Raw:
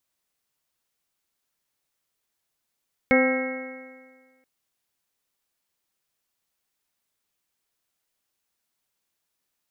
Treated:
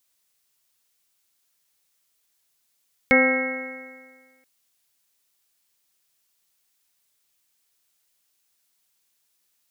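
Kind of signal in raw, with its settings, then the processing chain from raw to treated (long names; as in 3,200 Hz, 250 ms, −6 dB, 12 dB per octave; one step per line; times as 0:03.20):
stiff-string partials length 1.33 s, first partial 258 Hz, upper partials 1/−9/−19.5/−11/−10.5/−9.5/−1 dB, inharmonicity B 0.0019, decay 1.61 s, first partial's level −18.5 dB
high-shelf EQ 2,200 Hz +10 dB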